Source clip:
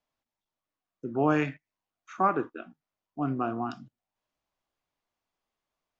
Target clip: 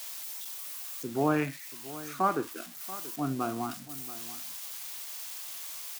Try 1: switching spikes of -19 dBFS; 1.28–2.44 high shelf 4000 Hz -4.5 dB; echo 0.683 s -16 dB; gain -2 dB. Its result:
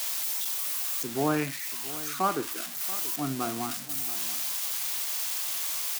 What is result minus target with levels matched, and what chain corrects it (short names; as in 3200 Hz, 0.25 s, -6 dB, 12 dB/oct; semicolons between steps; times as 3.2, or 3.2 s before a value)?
switching spikes: distortion +9 dB
switching spikes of -28.5 dBFS; 1.28–2.44 high shelf 4000 Hz -4.5 dB; echo 0.683 s -16 dB; gain -2 dB